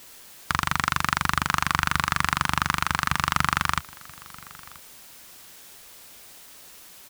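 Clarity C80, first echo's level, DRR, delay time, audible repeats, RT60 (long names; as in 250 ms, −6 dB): no reverb audible, −22.5 dB, no reverb audible, 981 ms, 1, no reverb audible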